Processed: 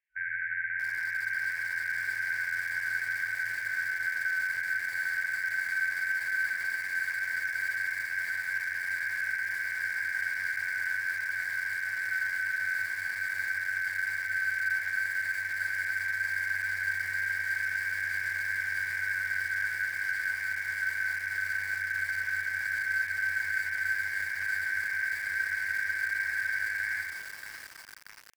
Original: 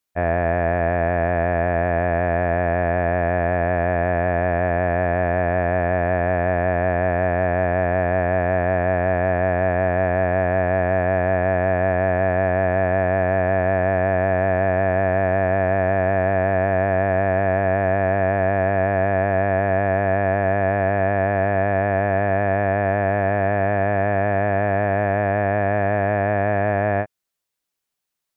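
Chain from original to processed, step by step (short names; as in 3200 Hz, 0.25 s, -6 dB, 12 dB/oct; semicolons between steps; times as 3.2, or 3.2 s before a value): FFT band-reject 140–1700 Hz; mistuned SSB -190 Hz 220–2400 Hz; HPF 69 Hz 6 dB/oct; feedback echo 75 ms, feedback 48%, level -18 dB; limiter -30.5 dBFS, peak gain reduction 8.5 dB; low shelf 310 Hz -5 dB; Schroeder reverb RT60 1.1 s, combs from 33 ms, DRR 1.5 dB; lo-fi delay 0.632 s, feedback 80%, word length 7-bit, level -10 dB; gain +5.5 dB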